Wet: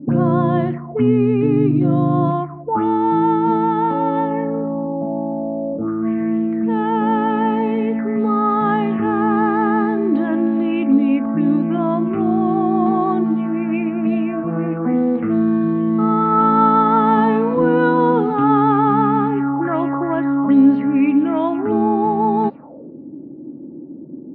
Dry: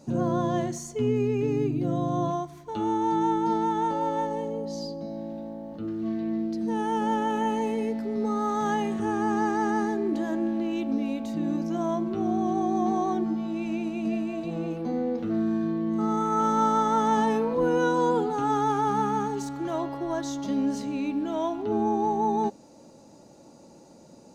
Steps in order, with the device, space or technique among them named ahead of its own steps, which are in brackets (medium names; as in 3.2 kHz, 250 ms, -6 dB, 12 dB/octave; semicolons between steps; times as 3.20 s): envelope filter bass rig (touch-sensitive low-pass 280–4100 Hz up, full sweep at -23.5 dBFS; cabinet simulation 61–2300 Hz, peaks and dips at 150 Hz +7 dB, 270 Hz +9 dB, 1.2 kHz +6 dB); trim +6.5 dB